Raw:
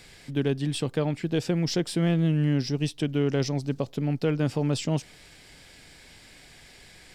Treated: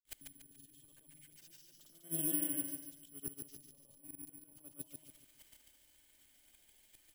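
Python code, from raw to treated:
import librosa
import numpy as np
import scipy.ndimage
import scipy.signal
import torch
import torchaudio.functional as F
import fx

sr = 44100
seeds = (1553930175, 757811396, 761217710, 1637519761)

p1 = scipy.signal.sosfilt(scipy.signal.butter(4, 7100.0, 'lowpass', fs=sr, output='sos'), x)
p2 = fx.peak_eq(p1, sr, hz=3100.0, db=10.0, octaves=0.21)
p3 = fx.hum_notches(p2, sr, base_hz=50, count=4)
p4 = p3 + 0.56 * np.pad(p3, (int(3.3 * sr / 1000.0), 0))[:len(p3)]
p5 = fx.over_compress(p4, sr, threshold_db=-36.0, ratio=-1.0)
p6 = fx.gate_flip(p5, sr, shuts_db=-31.0, range_db=-32)
p7 = fx.granulator(p6, sr, seeds[0], grain_ms=100.0, per_s=20.0, spray_ms=100.0, spread_st=0)
p8 = p7 + fx.echo_feedback(p7, sr, ms=143, feedback_pct=40, wet_db=-4.5, dry=0)
p9 = (np.kron(p8[::4], np.eye(4)[0]) * 4)[:len(p8)]
y = p9 * 10.0 ** (-1.5 / 20.0)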